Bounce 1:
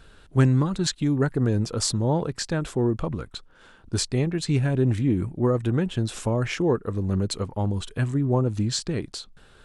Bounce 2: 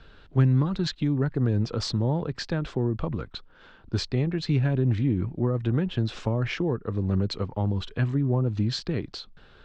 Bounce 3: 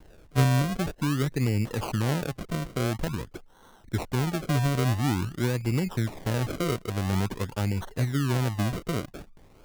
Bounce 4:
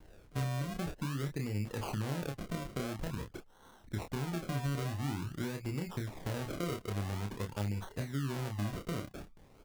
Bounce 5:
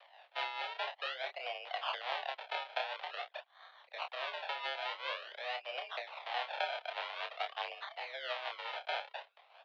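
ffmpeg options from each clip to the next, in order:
-filter_complex "[0:a]lowpass=f=4800:w=0.5412,lowpass=f=4800:w=1.3066,acrossover=split=190[s0][s1];[s1]acompressor=threshold=0.0501:ratio=6[s2];[s0][s2]amix=inputs=2:normalize=0"
-af "acrusher=samples=35:mix=1:aa=0.000001:lfo=1:lforange=35:lforate=0.48,volume=0.841"
-filter_complex "[0:a]acompressor=threshold=0.0355:ratio=4,asplit=2[s0][s1];[s1]adelay=29,volume=0.562[s2];[s0][s2]amix=inputs=2:normalize=0,volume=0.531"
-af "tremolo=f=4.7:d=0.54,highpass=f=460:t=q:w=0.5412,highpass=f=460:t=q:w=1.307,lowpass=f=3400:t=q:w=0.5176,lowpass=f=3400:t=q:w=0.7071,lowpass=f=3400:t=q:w=1.932,afreqshift=250,equalizer=f=1200:w=0.59:g=-13.5,volume=7.5"

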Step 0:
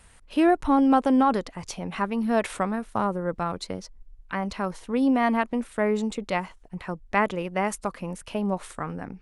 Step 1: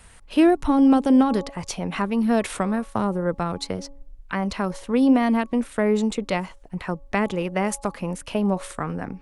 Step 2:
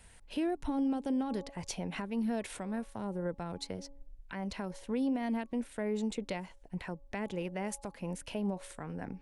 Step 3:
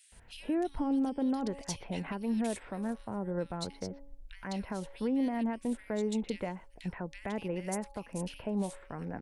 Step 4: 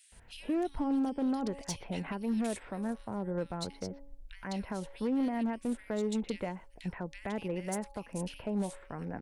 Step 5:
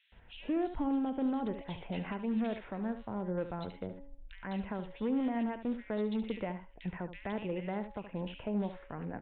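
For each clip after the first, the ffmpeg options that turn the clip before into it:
-filter_complex "[0:a]bandreject=f=278.7:t=h:w=4,bandreject=f=557.4:t=h:w=4,bandreject=f=836.1:t=h:w=4,bandreject=f=1114.8:t=h:w=4,acrossover=split=470|3000[s0][s1][s2];[s1]acompressor=threshold=0.0316:ratio=6[s3];[s0][s3][s2]amix=inputs=3:normalize=0,volume=1.78"
-af "alimiter=limit=0.133:level=0:latency=1:release=331,equalizer=f=1200:t=o:w=0.26:g=-10.5,volume=0.398"
-filter_complex "[0:a]acrossover=split=2300[s0][s1];[s0]adelay=120[s2];[s2][s1]amix=inputs=2:normalize=0,volume=1.19"
-af "asoftclip=type=hard:threshold=0.0501"
-filter_complex "[0:a]asplit=2[s0][s1];[s1]aecho=0:1:72:0.282[s2];[s0][s2]amix=inputs=2:normalize=0,aresample=8000,aresample=44100,volume=0.891"

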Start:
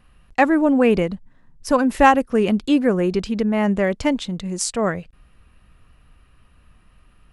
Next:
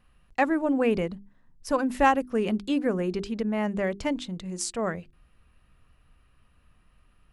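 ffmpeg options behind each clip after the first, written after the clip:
-af "bandreject=f=50:t=h:w=6,bandreject=f=100:t=h:w=6,bandreject=f=150:t=h:w=6,bandreject=f=200:t=h:w=6,bandreject=f=250:t=h:w=6,bandreject=f=300:t=h:w=6,bandreject=f=350:t=h:w=6,bandreject=f=400:t=h:w=6,volume=0.422"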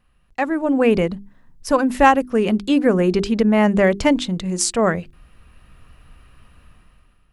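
-af "dynaudnorm=f=200:g=7:m=4.73"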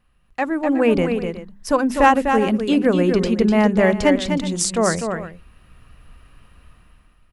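-af "aecho=1:1:249|368:0.473|0.168,volume=0.891"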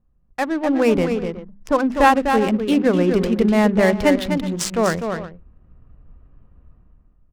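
-af "adynamicsmooth=sensitivity=4:basefreq=560"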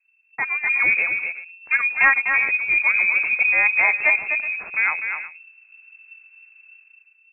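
-af "lowpass=f=2300:t=q:w=0.5098,lowpass=f=2300:t=q:w=0.6013,lowpass=f=2300:t=q:w=0.9,lowpass=f=2300:t=q:w=2.563,afreqshift=-2700,volume=0.75"

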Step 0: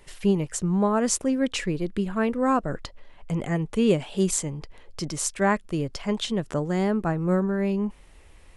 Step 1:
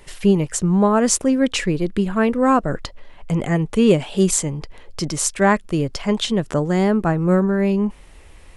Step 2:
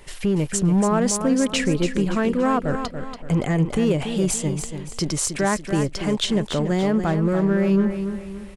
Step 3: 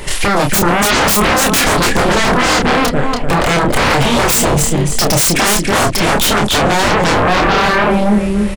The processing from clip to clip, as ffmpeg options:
-af "acontrast=32,volume=1.19"
-filter_complex "[0:a]alimiter=limit=0.237:level=0:latency=1:release=75,asoftclip=type=hard:threshold=0.2,asplit=2[s0][s1];[s1]aecho=0:1:285|570|855|1140:0.376|0.15|0.0601|0.0241[s2];[s0][s2]amix=inputs=2:normalize=0"
-filter_complex "[0:a]aeval=exprs='0.316*sin(PI/2*6.31*val(0)/0.316)':c=same,asplit=2[s0][s1];[s1]adelay=29,volume=0.596[s2];[s0][s2]amix=inputs=2:normalize=0"

